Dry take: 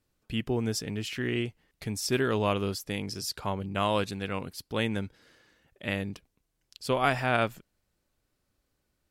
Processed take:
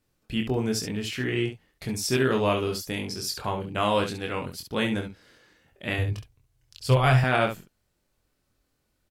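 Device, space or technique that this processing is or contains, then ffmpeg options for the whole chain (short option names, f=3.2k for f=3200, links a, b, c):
slapback doubling: -filter_complex "[0:a]asplit=3[a][b][c];[b]adelay=23,volume=-4dB[d];[c]adelay=68,volume=-8dB[e];[a][d][e]amix=inputs=3:normalize=0,asettb=1/sr,asplit=3[f][g][h];[f]atrim=end=5.984[i];[g]atrim=start=5.98:end=7.24,asetpts=PTS-STARTPTS,afade=t=in:d=0.004:c=qsin,afade=t=out:st=1.256:d=0.004:c=qsin,lowshelf=f=150:t=q:w=3:g=8.5[j];[h]atrim=start=7.236[k];[i][j]acrossfade=d=0.004:c1=hsin:c2=qsin[l];[l][k]acrossfade=d=0.004:c1=qsin:c2=hsin,volume=1.5dB"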